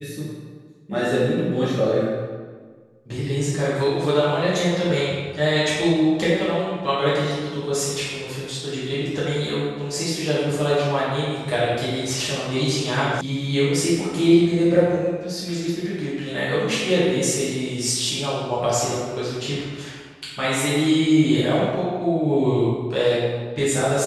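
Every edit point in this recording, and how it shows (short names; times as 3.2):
13.21 sound cut off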